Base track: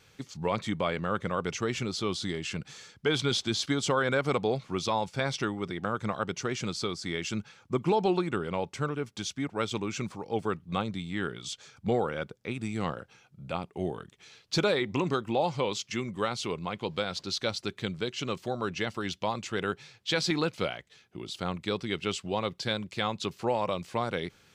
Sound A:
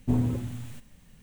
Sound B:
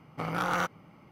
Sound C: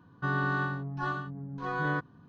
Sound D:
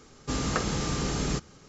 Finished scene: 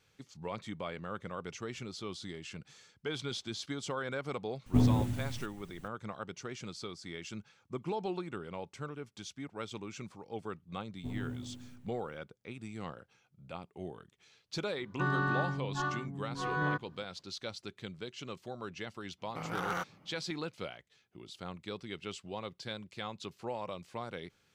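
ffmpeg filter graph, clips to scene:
ffmpeg -i bed.wav -i cue0.wav -i cue1.wav -i cue2.wav -filter_complex "[1:a]asplit=2[link_01][link_02];[0:a]volume=-10.5dB[link_03];[link_02]asplit=2[link_04][link_05];[link_05]adelay=117,lowpass=frequency=2000:poles=1,volume=-4.5dB,asplit=2[link_06][link_07];[link_07]adelay=117,lowpass=frequency=2000:poles=1,volume=0.53,asplit=2[link_08][link_09];[link_09]adelay=117,lowpass=frequency=2000:poles=1,volume=0.53,asplit=2[link_10][link_11];[link_11]adelay=117,lowpass=frequency=2000:poles=1,volume=0.53,asplit=2[link_12][link_13];[link_13]adelay=117,lowpass=frequency=2000:poles=1,volume=0.53,asplit=2[link_14][link_15];[link_15]adelay=117,lowpass=frequency=2000:poles=1,volume=0.53,asplit=2[link_16][link_17];[link_17]adelay=117,lowpass=frequency=2000:poles=1,volume=0.53[link_18];[link_04][link_06][link_08][link_10][link_12][link_14][link_16][link_18]amix=inputs=8:normalize=0[link_19];[link_01]atrim=end=1.22,asetpts=PTS-STARTPTS,volume=-0.5dB,afade=type=in:duration=0.004:curve=hsin,afade=type=out:start_time=1.216:duration=0.004:curve=hsin,adelay=4660[link_20];[link_19]atrim=end=1.22,asetpts=PTS-STARTPTS,volume=-16.5dB,afade=type=in:duration=0.004:curve=hsin,afade=type=out:start_time=1.216:duration=0.004:curve=hsin,adelay=10960[link_21];[3:a]atrim=end=2.28,asetpts=PTS-STARTPTS,volume=-2dB,afade=type=in:duration=0.004:curve=hsin,afade=type=out:start_time=2.276:duration=0.004:curve=hsin,adelay=14770[link_22];[2:a]atrim=end=1.11,asetpts=PTS-STARTPTS,volume=-7dB,afade=type=in:duration=0.1,afade=type=out:start_time=1.01:duration=0.1,adelay=19170[link_23];[link_03][link_20][link_21][link_22][link_23]amix=inputs=5:normalize=0" out.wav

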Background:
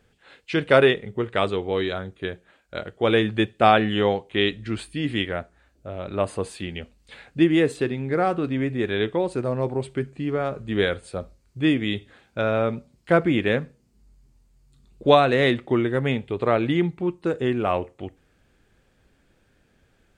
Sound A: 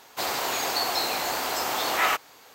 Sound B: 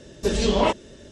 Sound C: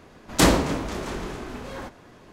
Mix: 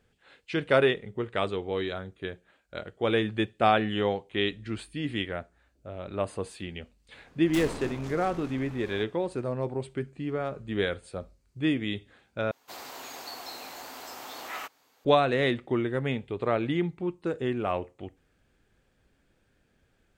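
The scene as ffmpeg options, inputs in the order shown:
ffmpeg -i bed.wav -i cue0.wav -i cue1.wav -i cue2.wav -filter_complex "[0:a]volume=-6dB[link_01];[3:a]aeval=exprs='(tanh(22.4*val(0)+0.65)-tanh(0.65))/22.4':channel_layout=same[link_02];[1:a]equalizer=frequency=260:width_type=o:width=0.21:gain=7[link_03];[link_01]asplit=2[link_04][link_05];[link_04]atrim=end=12.514[link_06];[link_03]atrim=end=2.54,asetpts=PTS-STARTPTS,volume=-14.5dB[link_07];[link_05]atrim=start=15.046[link_08];[link_02]atrim=end=2.32,asetpts=PTS-STARTPTS,volume=-7.5dB,afade=type=in:duration=0.004:curve=hsin,afade=type=out:start_time=2.316:duration=0.004:curve=hsin,adelay=7150[link_09];[link_06][link_07]acrossfade=duration=0.004:curve1=hsin:curve2=hsin[link_10];[link_10][link_08]acrossfade=duration=0.004:curve1=hsin:curve2=hsin[link_11];[link_11][link_09]amix=inputs=2:normalize=0" out.wav

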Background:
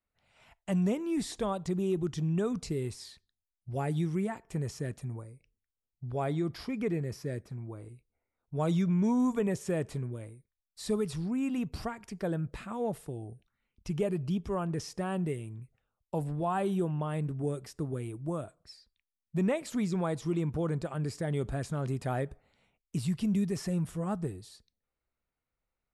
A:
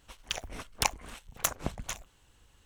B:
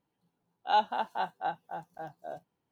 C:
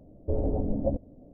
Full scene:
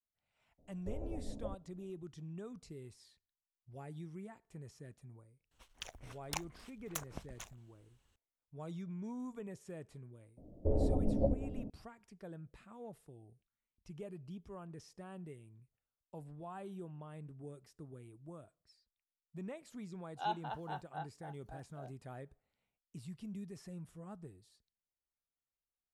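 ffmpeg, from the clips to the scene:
ffmpeg -i bed.wav -i cue0.wav -i cue1.wav -i cue2.wav -filter_complex "[3:a]asplit=2[link_01][link_02];[0:a]volume=-16.5dB[link_03];[link_01]equalizer=frequency=190:width_type=o:width=3:gain=-6.5[link_04];[link_02]asplit=2[link_05][link_06];[link_06]adelay=507.3,volume=-11dB,highshelf=frequency=4000:gain=-11.4[link_07];[link_05][link_07]amix=inputs=2:normalize=0[link_08];[link_04]atrim=end=1.33,asetpts=PTS-STARTPTS,volume=-12dB,afade=type=in:duration=0.004:curve=hsin,afade=type=out:start_time=1.326:duration=0.004:curve=hsin,adelay=580[link_09];[1:a]atrim=end=2.65,asetpts=PTS-STARTPTS,volume=-12.5dB,afade=type=in:duration=0.004:curve=hsin,afade=type=out:start_time=2.646:duration=0.004:curve=hsin,adelay=5510[link_10];[link_08]atrim=end=1.33,asetpts=PTS-STARTPTS,volume=-4dB,afade=type=in:duration=0.004:curve=hsin,afade=type=out:start_time=1.326:duration=0.004:curve=hsin,adelay=10370[link_11];[2:a]atrim=end=2.71,asetpts=PTS-STARTPTS,volume=-11.5dB,afade=type=in:duration=0.004:curve=hsin,afade=type=out:start_time=2.706:duration=0.004:curve=hsin,adelay=19520[link_12];[link_03][link_09][link_10][link_11][link_12]amix=inputs=5:normalize=0" out.wav

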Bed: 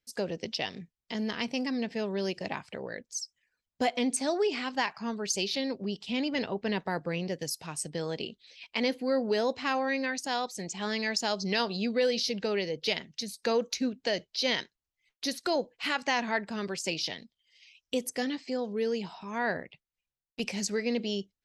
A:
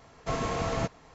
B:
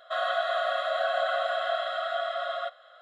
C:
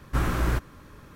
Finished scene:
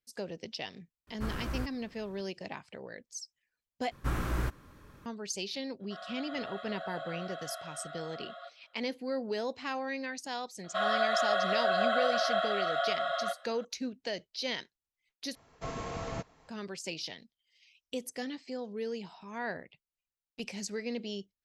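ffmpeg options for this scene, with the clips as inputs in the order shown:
ffmpeg -i bed.wav -i cue0.wav -i cue1.wav -i cue2.wav -filter_complex "[3:a]asplit=2[link_01][link_02];[2:a]asplit=2[link_03][link_04];[0:a]volume=-6.5dB[link_05];[link_01]flanger=delay=2.8:depth=9.5:regen=-72:speed=1.9:shape=sinusoidal[link_06];[link_03]dynaudnorm=framelen=360:gausssize=3:maxgain=3.5dB[link_07];[link_05]asplit=3[link_08][link_09][link_10];[link_08]atrim=end=3.914[link_11];[link_02]atrim=end=1.15,asetpts=PTS-STARTPTS,volume=-7dB[link_12];[link_09]atrim=start=5.056:end=15.354[link_13];[1:a]atrim=end=1.14,asetpts=PTS-STARTPTS,volume=-8dB[link_14];[link_10]atrim=start=16.486[link_15];[link_06]atrim=end=1.15,asetpts=PTS-STARTPTS,volume=-7.5dB,afade=type=in:duration=0.004:curve=hsin,afade=type=out:start_time=1.146:duration=0.004:curve=hsin,adelay=1070[link_16];[link_07]atrim=end=3.01,asetpts=PTS-STARTPTS,volume=-18dB,afade=type=in:duration=0.004:curve=hsin,afade=type=out:start_time=3.006:duration=0.004:curve=hsin,adelay=5800[link_17];[link_04]atrim=end=3.01,asetpts=PTS-STARTPTS,volume=-1dB,afade=type=in:duration=0.004:curve=hsin,afade=type=out:start_time=3.006:duration=0.004:curve=hsin,adelay=10640[link_18];[link_11][link_12]acrossfade=duration=0.004:curve1=hsin:curve2=hsin[link_19];[link_19][link_13]acrossfade=duration=0.004:curve1=hsin:curve2=hsin[link_20];[link_20][link_14]acrossfade=duration=0.004:curve1=hsin:curve2=hsin[link_21];[link_21][link_15]acrossfade=duration=0.004:curve1=hsin:curve2=hsin[link_22];[link_22][link_16][link_17][link_18]amix=inputs=4:normalize=0" out.wav

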